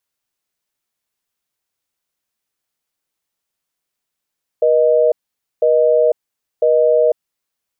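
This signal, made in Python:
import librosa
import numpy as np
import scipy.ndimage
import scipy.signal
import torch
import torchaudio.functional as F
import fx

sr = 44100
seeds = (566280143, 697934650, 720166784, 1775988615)

y = fx.call_progress(sr, length_s=2.74, kind='busy tone', level_db=-12.5)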